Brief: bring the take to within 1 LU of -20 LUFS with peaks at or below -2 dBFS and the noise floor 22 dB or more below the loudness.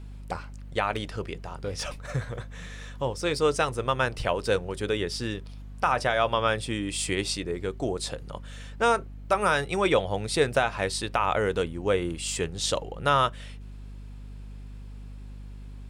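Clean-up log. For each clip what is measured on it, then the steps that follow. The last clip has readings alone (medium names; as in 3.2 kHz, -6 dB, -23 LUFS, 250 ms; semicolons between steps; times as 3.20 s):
hum 50 Hz; highest harmonic 250 Hz; hum level -39 dBFS; loudness -27.5 LUFS; peak level -9.5 dBFS; loudness target -20.0 LUFS
-> de-hum 50 Hz, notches 5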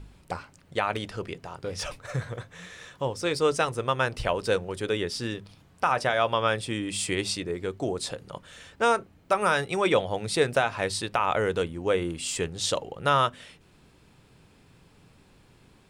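hum not found; loudness -27.5 LUFS; peak level -10.0 dBFS; loudness target -20.0 LUFS
-> trim +7.5 dB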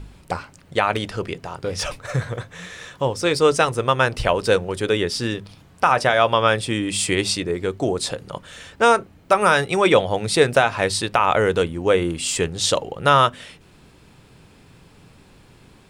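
loudness -20.0 LUFS; peak level -2.5 dBFS; noise floor -51 dBFS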